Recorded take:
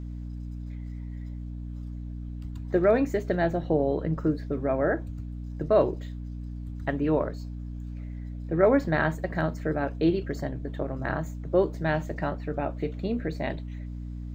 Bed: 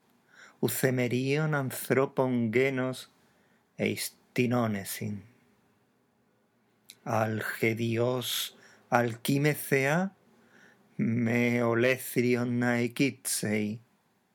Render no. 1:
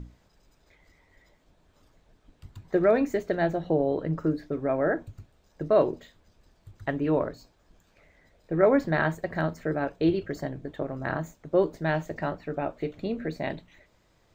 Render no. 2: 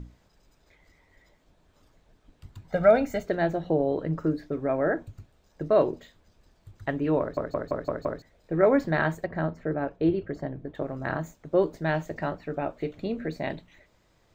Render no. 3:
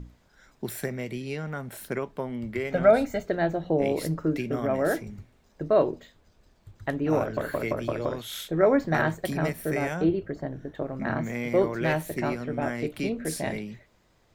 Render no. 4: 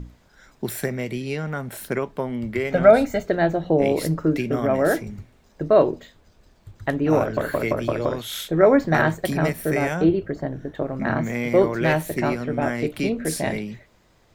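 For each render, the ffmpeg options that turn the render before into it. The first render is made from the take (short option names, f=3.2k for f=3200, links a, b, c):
-af "bandreject=f=60:t=h:w=6,bandreject=f=120:t=h:w=6,bandreject=f=180:t=h:w=6,bandreject=f=240:t=h:w=6,bandreject=f=300:t=h:w=6"
-filter_complex "[0:a]asettb=1/sr,asplit=3[a][b][c];[a]atrim=end=2.694[d];[b]atrim=start=2.69:end=3.25,asetpts=PTS-STARTPTS,afade=t=in:d=0.004:c=qsin,afade=t=out:st=0.556:d=0.004:c=qsin,aecho=1:1:1.4:0.94,atrim=end_sample=24696[e];[c]atrim=start=3.246[f];[d][e]acrossfade=d=0.004:c1=hsin:c2=qsin[g];[g][f]acrossfade=d=0.004:c1=qsin:c2=hsin,asettb=1/sr,asplit=3[h][i][j];[h]atrim=end=9.264[k];[i]atrim=start=9.26:end=10.75,asetpts=PTS-STARTPTS,afade=t=in:d=0.004:c=qsin,afade=t=out:st=1.486:d=0.004:c=qsin,lowpass=f=1.4k:p=1[l];[j]atrim=start=10.746[m];[k][l]acrossfade=d=0.004:c1=hsin:c2=qsin[n];[n][m]acrossfade=d=0.004:c1=qsin:c2=hsin,asplit=7[o][p][q][r][s][t][u];[o]atrim=end=7.372[v];[p]atrim=start=7.198:end=7.372[w];[q]atrim=start=7.198:end=7.372[x];[r]atrim=start=7.198:end=7.372[y];[s]atrim=start=7.198:end=7.372[z];[t]atrim=start=7.198:end=7.372[aa];[u]atrim=start=8.218[ab];[v][w]acrossfade=d=0.004:c1=hsin:c2=hsin[ac];[ac][x]acrossfade=d=0.004:c1=hsin:c2=hsin[ad];[ad][y]acrossfade=d=0.004:c1=hsin:c2=hsin[ae];[ae][z]acrossfade=d=0.004:c1=hsin:c2=hsin[af];[af][aa]acrossfade=d=0.004:c1=hsin:c2=hsin[ag];[ag][ab]acrossfade=d=0.004:c1=hsin:c2=hsin"
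-filter_complex "[1:a]volume=-5.5dB[a];[0:a][a]amix=inputs=2:normalize=0"
-af "volume=5.5dB"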